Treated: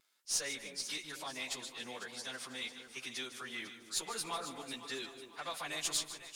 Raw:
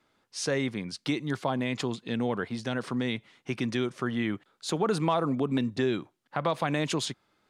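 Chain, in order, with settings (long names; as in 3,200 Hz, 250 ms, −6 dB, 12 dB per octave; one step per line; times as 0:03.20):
phase-vocoder pitch shift without resampling −2.5 semitones
first difference
speed change +18%
in parallel at −3.5 dB: asymmetric clip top −48 dBFS
on the sum: pitch vibrato 1 Hz 13 cents
on a send: delay that swaps between a low-pass and a high-pass 249 ms, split 860 Hz, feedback 61%, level −8 dB
on the sum: feedback echo at a low word length 151 ms, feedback 35%, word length 12 bits, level −13 dB
level +4 dB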